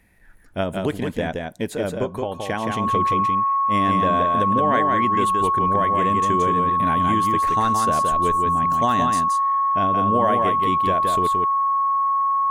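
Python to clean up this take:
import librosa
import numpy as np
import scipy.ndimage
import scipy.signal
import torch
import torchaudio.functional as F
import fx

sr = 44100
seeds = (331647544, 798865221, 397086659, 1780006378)

y = fx.notch(x, sr, hz=1100.0, q=30.0)
y = fx.fix_echo_inverse(y, sr, delay_ms=173, level_db=-4.0)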